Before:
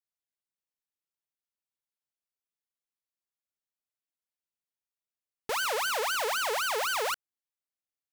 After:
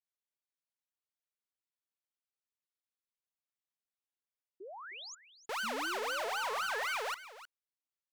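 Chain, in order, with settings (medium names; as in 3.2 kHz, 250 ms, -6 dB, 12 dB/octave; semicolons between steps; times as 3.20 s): painted sound rise, 5.63–6.98 s, 210–2500 Hz -35 dBFS; overdrive pedal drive 4 dB, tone 4.7 kHz, clips at -21.5 dBFS; bass shelf 130 Hz -7 dB; painted sound rise, 4.60–5.15 s, 350–7300 Hz -41 dBFS; on a send: delay 310 ms -15 dB; on the sum: trim -6 dB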